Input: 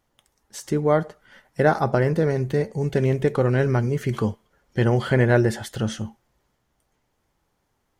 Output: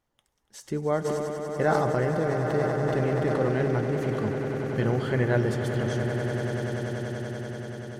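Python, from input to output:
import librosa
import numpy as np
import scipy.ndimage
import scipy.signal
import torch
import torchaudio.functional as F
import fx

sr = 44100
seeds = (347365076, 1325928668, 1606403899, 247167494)

y = fx.high_shelf(x, sr, hz=9300.0, db=-4.0)
y = fx.echo_swell(y, sr, ms=96, loudest=8, wet_db=-11.0)
y = fx.sustainer(y, sr, db_per_s=24.0, at=(1.04, 3.72), fade=0.02)
y = y * 10.0 ** (-7.0 / 20.0)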